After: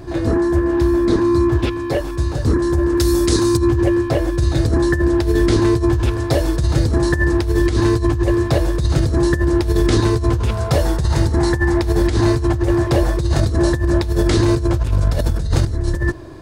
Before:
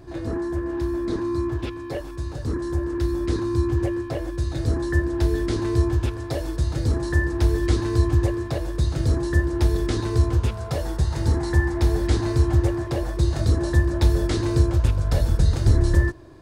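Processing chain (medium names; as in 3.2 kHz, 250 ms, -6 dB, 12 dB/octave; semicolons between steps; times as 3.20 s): 2.97–3.57 s: tone controls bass -2 dB, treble +14 dB; compressor with a negative ratio -23 dBFS, ratio -1; trim +8 dB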